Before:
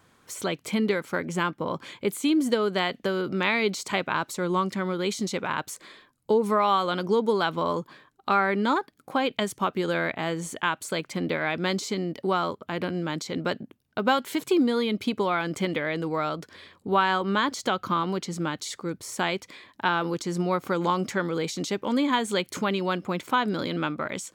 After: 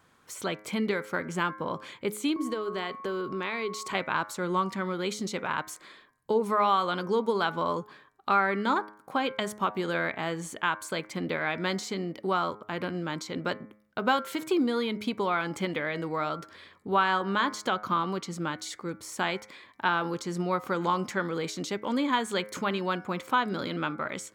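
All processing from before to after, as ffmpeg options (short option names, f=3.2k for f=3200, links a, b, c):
-filter_complex "[0:a]asettb=1/sr,asplit=3[a][b][c];[a]atrim=end=2.364[d];[b]atrim=start=2.36:end=3.95,asetpts=PTS-STARTPTS,afade=t=in:d=0.004:c=qsin,afade=t=out:st=1.586:d=0.004:c=qsin,equalizer=f=400:t=o:w=0.36:g=7,acompressor=threshold=-30dB:ratio=2:attack=3.2:release=140:knee=1:detection=peak,aeval=exprs='val(0)+0.0112*sin(2*PI*1100*n/s)':c=same[e];[c]atrim=start=3.946[f];[d][e]acrossfade=d=0.004:c1=hsin:c2=qsin[g];[g][f]acrossfade=d=0.004:c1=qsin:c2=hsin,equalizer=f=1.3k:t=o:w=1.5:g=3.5,bandreject=f=105.3:t=h:w=4,bandreject=f=210.6:t=h:w=4,bandreject=f=315.9:t=h:w=4,bandreject=f=421.2:t=h:w=4,bandreject=f=526.5:t=h:w=4,bandreject=f=631.8:t=h:w=4,bandreject=f=737.1:t=h:w=4,bandreject=f=842.4:t=h:w=4,bandreject=f=947.7:t=h:w=4,bandreject=f=1.053k:t=h:w=4,bandreject=f=1.1583k:t=h:w=4,bandreject=f=1.2636k:t=h:w=4,bandreject=f=1.3689k:t=h:w=4,bandreject=f=1.4742k:t=h:w=4,bandreject=f=1.5795k:t=h:w=4,bandreject=f=1.6848k:t=h:w=4,bandreject=f=1.7901k:t=h:w=4,bandreject=f=1.8954k:t=h:w=4,bandreject=f=2.0007k:t=h:w=4,bandreject=f=2.106k:t=h:w=4,bandreject=f=2.2113k:t=h:w=4,bandreject=f=2.3166k:t=h:w=4,volume=-4dB"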